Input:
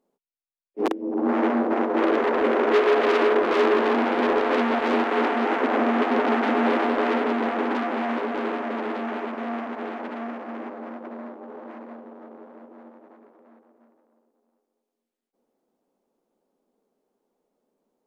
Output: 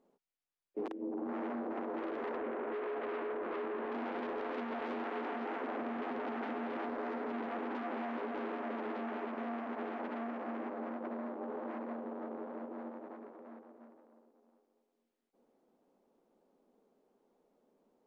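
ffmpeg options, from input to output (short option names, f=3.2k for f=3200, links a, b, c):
-filter_complex "[0:a]asettb=1/sr,asplit=3[a][b][c];[a]atrim=end=2.374[d];[b]atrim=start=2.37:end=3.92,asetpts=PTS-STARTPTS,afade=t=in:d=0.004:c=qsin,afade=t=out:st=1.546:d=0.004:c=qsin,lowpass=2.6k[e];[c]atrim=start=3.916[f];[d][e]acrossfade=d=0.004:c1=hsin:c2=qsin[g];[g][f]acrossfade=d=0.004:c1=qsin:c2=hsin,asettb=1/sr,asplit=3[h][i][j];[h]atrim=end=6.864[k];[i]atrim=start=6.86:end=7.3,asetpts=PTS-STARTPTS,afade=t=in:d=0.004:c=qsin,afade=t=out:st=0.436:d=0.004:c=qsin,equalizer=f=3k:t=o:w=0.85:g=-5.5[l];[j]atrim=start=7.296[m];[k][l]acrossfade=d=0.004:c1=hsin:c2=qsin[n];[n][m]acrossfade=d=0.004:c1=qsin:c2=hsin,lowpass=f=3k:p=1,alimiter=limit=-18.5dB:level=0:latency=1:release=27,acompressor=threshold=-40dB:ratio=6,volume=2.5dB"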